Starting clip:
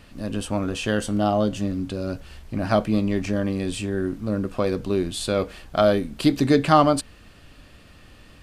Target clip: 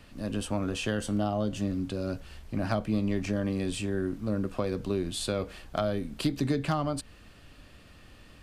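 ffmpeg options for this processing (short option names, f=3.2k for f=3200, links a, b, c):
-filter_complex "[0:a]acrossover=split=160[a][b];[b]acompressor=threshold=-22dB:ratio=10[c];[a][c]amix=inputs=2:normalize=0,asoftclip=type=hard:threshold=-13dB,volume=-4dB"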